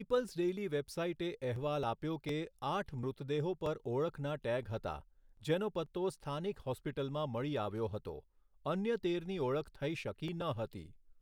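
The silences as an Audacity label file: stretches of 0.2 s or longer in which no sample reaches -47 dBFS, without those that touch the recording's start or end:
5.000000	5.430000	silence
8.190000	8.660000	silence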